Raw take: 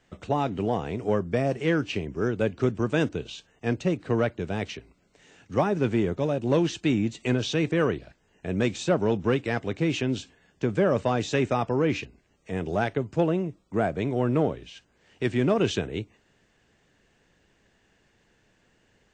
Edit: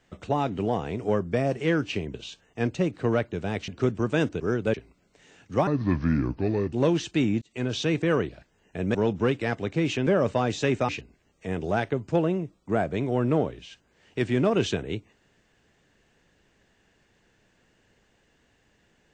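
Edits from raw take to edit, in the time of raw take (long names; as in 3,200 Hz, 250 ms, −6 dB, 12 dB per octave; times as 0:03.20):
0:02.14–0:02.48: swap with 0:03.20–0:04.74
0:05.67–0:06.42: play speed 71%
0:07.11–0:07.47: fade in
0:08.64–0:08.99: remove
0:10.11–0:10.77: remove
0:11.59–0:11.93: remove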